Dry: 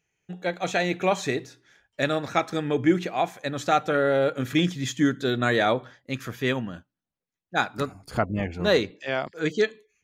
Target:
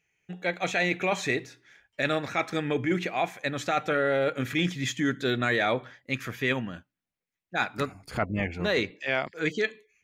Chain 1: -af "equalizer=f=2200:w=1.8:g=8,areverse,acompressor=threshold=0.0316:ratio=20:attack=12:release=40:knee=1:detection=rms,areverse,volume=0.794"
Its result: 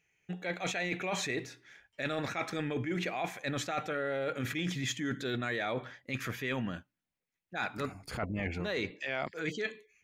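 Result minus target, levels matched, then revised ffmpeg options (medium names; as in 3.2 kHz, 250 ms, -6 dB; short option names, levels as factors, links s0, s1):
compression: peak gain reduction +9 dB
-af "equalizer=f=2200:w=1.8:g=8,areverse,acompressor=threshold=0.0944:ratio=20:attack=12:release=40:knee=1:detection=rms,areverse,volume=0.794"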